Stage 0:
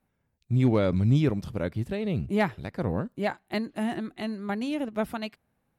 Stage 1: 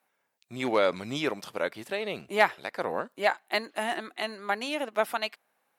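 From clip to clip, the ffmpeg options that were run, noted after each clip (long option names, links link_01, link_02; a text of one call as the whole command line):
ffmpeg -i in.wav -af "highpass=660,volume=7dB" out.wav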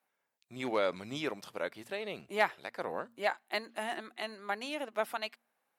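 ffmpeg -i in.wav -af "bandreject=frequency=115.9:width_type=h:width=4,bandreject=frequency=231.8:width_type=h:width=4,volume=-6.5dB" out.wav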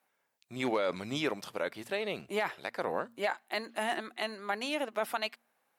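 ffmpeg -i in.wav -af "alimiter=limit=-24dB:level=0:latency=1:release=20,volume=4.5dB" out.wav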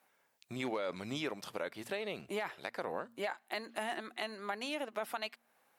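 ffmpeg -i in.wav -af "acompressor=threshold=-47dB:ratio=2,volume=4.5dB" out.wav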